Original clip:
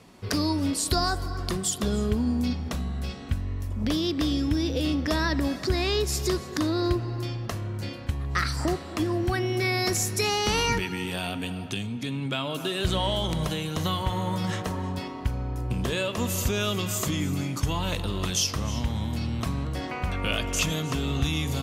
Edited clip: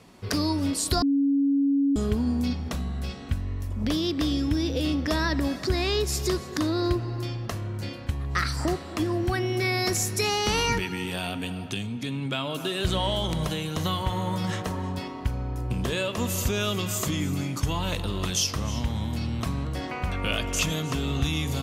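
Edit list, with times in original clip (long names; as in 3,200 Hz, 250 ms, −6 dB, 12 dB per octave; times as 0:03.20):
0:01.02–0:01.96: beep over 279 Hz −19 dBFS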